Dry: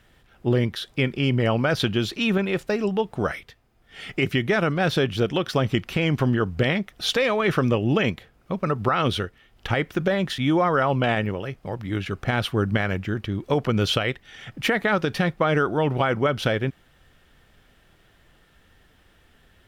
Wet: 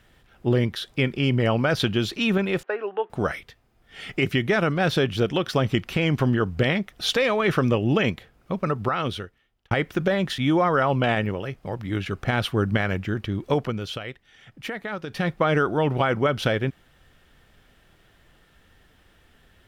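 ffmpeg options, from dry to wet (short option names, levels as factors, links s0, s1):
-filter_complex "[0:a]asettb=1/sr,asplit=3[s0][s1][s2];[s0]atrim=end=2.634[s3];[s1]atrim=start=2.63:end=3.1,asetpts=PTS-STARTPTS,afade=t=in:d=0.004:c=qsin,afade=t=out:st=0.466:d=0.004:c=qsin,highpass=f=410:w=0.5412,highpass=f=410:w=1.3066,equalizer=f=600:t=q:w=4:g=-4,equalizer=f=1500:t=q:w=4:g=5,equalizer=f=2200:t=q:w=4:g=-5,lowpass=f=2500:w=0.5412,lowpass=f=2500:w=1.3066[s4];[s2]atrim=start=3.096[s5];[s3][s4]acrossfade=d=0.004:c1=hsin:c2=qsin[s6];[s6][s5]acrossfade=d=0.004:c1=qsin:c2=hsin,asplit=4[s7][s8][s9][s10];[s7]atrim=end=9.71,asetpts=PTS-STARTPTS,afade=t=out:st=8.6:d=1.11[s11];[s8]atrim=start=9.71:end=13.8,asetpts=PTS-STARTPTS,afade=t=in:d=0.004:c=hsin,afade=t=out:st=3.83:d=0.26:silence=0.316228[s12];[s9]atrim=start=13.8:end=15.07,asetpts=PTS-STARTPTS,volume=0.316[s13];[s10]atrim=start=15.07,asetpts=PTS-STARTPTS,afade=t=in:d=0.26:silence=0.316228[s14];[s11][s12][s13][s14]concat=n=4:v=0:a=1"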